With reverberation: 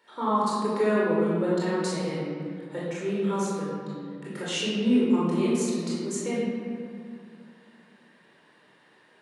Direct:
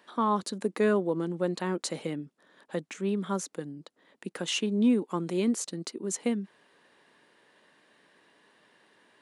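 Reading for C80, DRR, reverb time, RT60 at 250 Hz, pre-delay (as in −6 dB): 0.0 dB, −8.0 dB, 2.2 s, 2.8 s, 20 ms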